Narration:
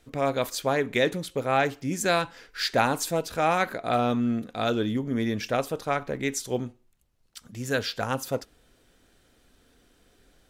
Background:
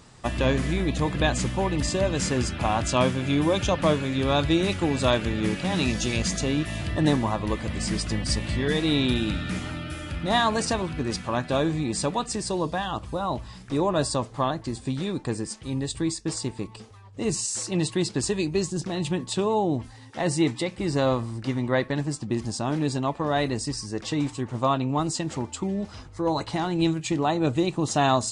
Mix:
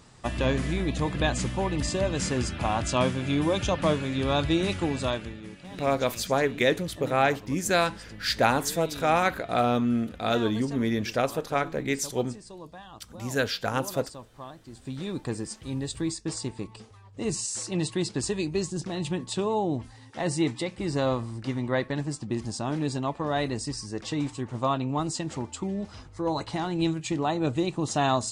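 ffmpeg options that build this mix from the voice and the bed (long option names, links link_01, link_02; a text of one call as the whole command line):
ffmpeg -i stem1.wav -i stem2.wav -filter_complex "[0:a]adelay=5650,volume=0.5dB[link_01];[1:a]volume=11.5dB,afade=type=out:start_time=4.81:duration=0.61:silence=0.188365,afade=type=in:start_time=14.66:duration=0.51:silence=0.199526[link_02];[link_01][link_02]amix=inputs=2:normalize=0" out.wav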